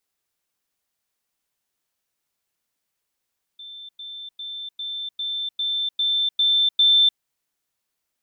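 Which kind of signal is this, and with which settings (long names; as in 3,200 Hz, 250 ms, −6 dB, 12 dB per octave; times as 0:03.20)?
level staircase 3,550 Hz −36.5 dBFS, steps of 3 dB, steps 9, 0.30 s 0.10 s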